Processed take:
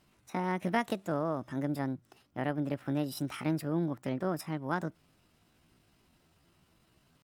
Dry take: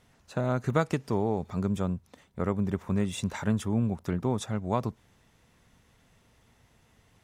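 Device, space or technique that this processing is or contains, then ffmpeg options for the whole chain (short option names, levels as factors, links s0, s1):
chipmunk voice: -af "asetrate=64194,aresample=44100,atempo=0.686977,volume=0.596"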